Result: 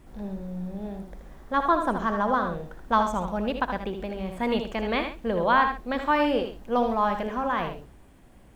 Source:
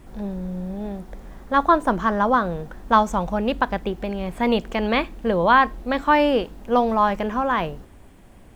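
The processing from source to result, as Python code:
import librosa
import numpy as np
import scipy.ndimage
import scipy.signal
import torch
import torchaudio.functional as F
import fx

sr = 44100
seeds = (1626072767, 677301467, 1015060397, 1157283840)

y = fx.echo_multitap(x, sr, ms=(62, 78, 133), db=(-13.5, -7.5, -16.0))
y = y * librosa.db_to_amplitude(-6.0)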